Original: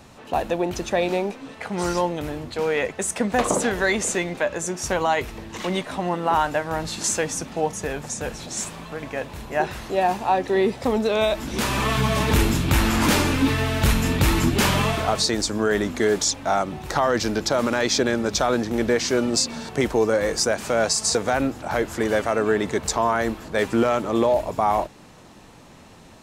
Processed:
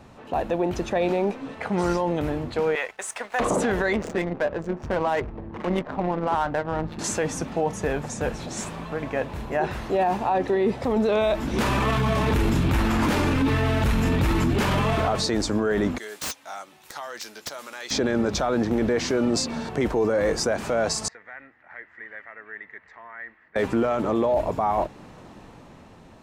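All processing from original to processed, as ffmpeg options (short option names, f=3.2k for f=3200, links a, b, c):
-filter_complex "[0:a]asettb=1/sr,asplit=3[a][b][c];[a]atrim=end=2.754[d];[b]atrim=start=2.75:end=3.4,asetpts=PTS-STARTPTS,afade=t=in:d=0.004:c=qsin,afade=t=out:st=0.646:d=0.004:c=qsin,highpass=950,aeval=exprs='sgn(val(0))*max(abs(val(0))-0.00422,0)':c=same[e];[c]atrim=start=3.396[f];[d][e]acrossfade=d=0.004:c1=hsin:c2=qsin[g];[g][f]acrossfade=d=0.004:c1=qsin:c2=hsin,asettb=1/sr,asplit=3[h][i][j];[h]atrim=end=3.934[k];[i]atrim=start=3.93:end=6.99,asetpts=PTS-STARTPTS,afade=t=in:d=0.004:c=qsin,afade=t=out:st=3.056:d=0.004:c=qsin,tremolo=f=150:d=0.519,adynamicsmooth=sensitivity=3.5:basefreq=600[l];[j]atrim=start=6.986[m];[k][l]acrossfade=d=0.004:c1=hsin:c2=qsin[n];[n][m]acrossfade=d=0.004:c1=qsin:c2=hsin,asettb=1/sr,asplit=3[o][p][q];[o]atrim=end=15.984[r];[p]atrim=start=15.98:end=17.91,asetpts=PTS-STARTPTS,afade=t=in:d=0.004:c=qsin,afade=t=out:st=1.926:d=0.004:c=qsin,aderivative,aeval=exprs='(mod(8.91*val(0)+1,2)-1)/8.91':c=same,asplit=2[s][t];[t]adelay=14,volume=-11.5dB[u];[s][u]amix=inputs=2:normalize=0,atrim=end_sample=85113[v];[q]atrim=start=17.906[w];[r][v]acrossfade=d=0.004:c1=hsin:c2=qsin[x];[x][w]acrossfade=d=0.004:c1=qsin:c2=hsin,asettb=1/sr,asplit=3[y][z][aa];[y]atrim=end=21.084[ab];[z]atrim=start=21.08:end=23.56,asetpts=PTS-STARTPTS,afade=t=in:d=0.004:c=qsin,afade=t=out:st=2.476:d=0.004:c=qsin,bandpass=f=1.9k:t=q:w=12,aemphasis=mode=reproduction:type=bsi[ac];[aa]atrim=start=23.556[ad];[ab][ac]acrossfade=d=0.004:c1=hsin:c2=qsin[ae];[ae][ad]acrossfade=d=0.004:c1=qsin:c2=hsin,highshelf=f=3.1k:g=-11.5,dynaudnorm=f=120:g=13:m=3.5dB,alimiter=limit=-14.5dB:level=0:latency=1:release=11"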